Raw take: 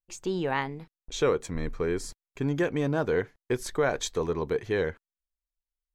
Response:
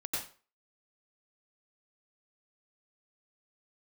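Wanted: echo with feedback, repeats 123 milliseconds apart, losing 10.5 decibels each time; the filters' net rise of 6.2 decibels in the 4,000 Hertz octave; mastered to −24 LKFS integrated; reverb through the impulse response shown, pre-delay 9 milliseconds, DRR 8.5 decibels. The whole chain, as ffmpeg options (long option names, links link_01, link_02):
-filter_complex "[0:a]equalizer=frequency=4000:width_type=o:gain=7.5,aecho=1:1:123|246|369:0.299|0.0896|0.0269,asplit=2[link_01][link_02];[1:a]atrim=start_sample=2205,adelay=9[link_03];[link_02][link_03]afir=irnorm=-1:irlink=0,volume=-11.5dB[link_04];[link_01][link_04]amix=inputs=2:normalize=0,volume=4dB"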